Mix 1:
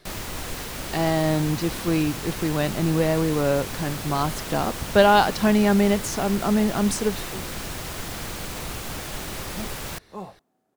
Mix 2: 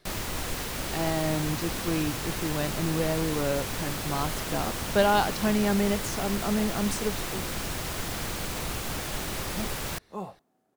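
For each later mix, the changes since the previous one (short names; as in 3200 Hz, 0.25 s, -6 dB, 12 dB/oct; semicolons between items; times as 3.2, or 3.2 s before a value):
speech -6.5 dB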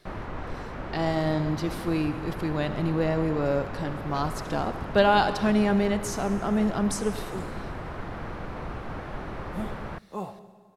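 first sound: add Chebyshev low-pass 1300 Hz, order 2; reverb: on, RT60 1.6 s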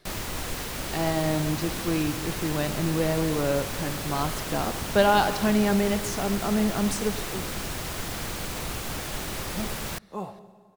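first sound: remove Chebyshev low-pass 1300 Hz, order 2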